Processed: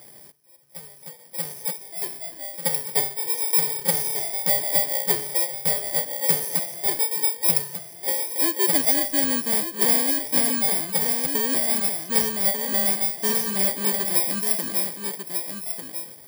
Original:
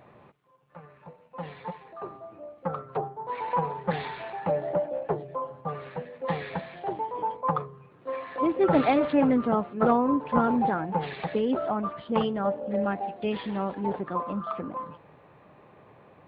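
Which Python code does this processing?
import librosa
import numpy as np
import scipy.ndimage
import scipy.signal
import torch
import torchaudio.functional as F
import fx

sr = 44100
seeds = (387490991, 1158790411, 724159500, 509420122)

y = fx.bit_reversed(x, sr, seeds[0], block=32)
y = fx.high_shelf(y, sr, hz=3200.0, db=8.0)
y = fx.notch(y, sr, hz=1100.0, q=23.0)
y = y + 10.0 ** (-7.5 / 20.0) * np.pad(y, (int(1194 * sr / 1000.0), 0))[:len(y)]
y = fx.rider(y, sr, range_db=3, speed_s=0.5)
y = fx.low_shelf(y, sr, hz=240.0, db=-6.5)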